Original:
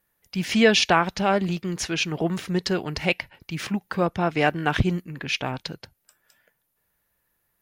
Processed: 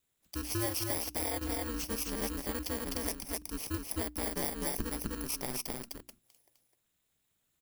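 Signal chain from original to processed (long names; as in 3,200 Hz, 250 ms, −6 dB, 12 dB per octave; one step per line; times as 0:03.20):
samples in bit-reversed order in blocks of 32 samples
single-tap delay 255 ms −3.5 dB
downward compressor 4 to 1, threshold −25 dBFS, peak gain reduction 11.5 dB
mains-hum notches 60/120/180/240 Hz
ring modulation 120 Hz
level −4 dB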